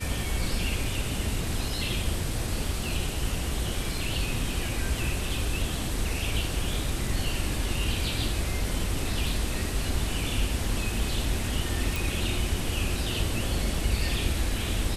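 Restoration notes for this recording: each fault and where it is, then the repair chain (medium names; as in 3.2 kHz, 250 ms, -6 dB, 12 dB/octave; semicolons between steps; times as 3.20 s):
11.96 s: pop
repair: de-click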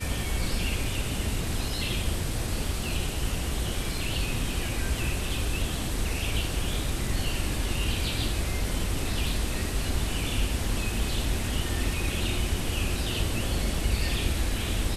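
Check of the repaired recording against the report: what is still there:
nothing left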